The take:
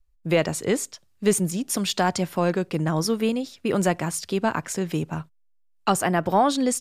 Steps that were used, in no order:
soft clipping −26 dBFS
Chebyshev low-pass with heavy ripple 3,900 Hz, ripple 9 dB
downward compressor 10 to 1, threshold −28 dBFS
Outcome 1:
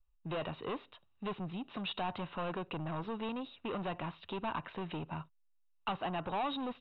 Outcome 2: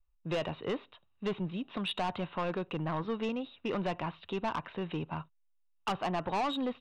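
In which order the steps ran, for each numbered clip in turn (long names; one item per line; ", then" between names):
soft clipping, then downward compressor, then Chebyshev low-pass with heavy ripple
Chebyshev low-pass with heavy ripple, then soft clipping, then downward compressor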